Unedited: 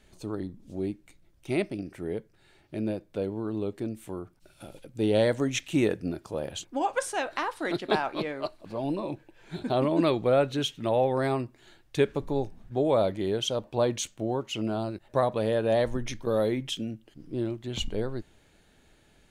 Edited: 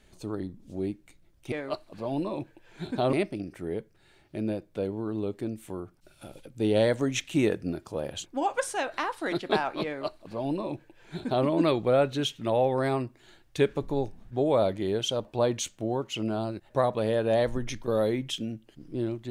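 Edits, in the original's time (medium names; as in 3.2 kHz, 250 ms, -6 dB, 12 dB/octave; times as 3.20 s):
8.24–9.85 s: copy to 1.52 s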